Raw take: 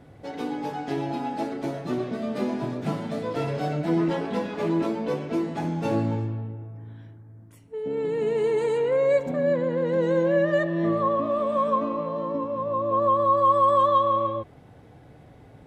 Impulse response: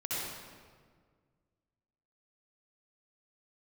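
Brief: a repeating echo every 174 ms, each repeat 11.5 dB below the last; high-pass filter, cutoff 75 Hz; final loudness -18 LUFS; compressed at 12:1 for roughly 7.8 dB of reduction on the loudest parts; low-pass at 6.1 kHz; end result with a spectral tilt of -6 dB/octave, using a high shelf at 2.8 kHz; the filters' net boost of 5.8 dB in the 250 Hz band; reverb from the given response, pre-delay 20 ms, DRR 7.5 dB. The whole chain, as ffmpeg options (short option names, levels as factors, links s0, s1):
-filter_complex "[0:a]highpass=75,lowpass=6100,equalizer=f=250:t=o:g=8,highshelf=f=2800:g=-3.5,acompressor=threshold=0.0708:ratio=12,aecho=1:1:174|348|522:0.266|0.0718|0.0194,asplit=2[s0][s1];[1:a]atrim=start_sample=2205,adelay=20[s2];[s1][s2]afir=irnorm=-1:irlink=0,volume=0.237[s3];[s0][s3]amix=inputs=2:normalize=0,volume=2.82"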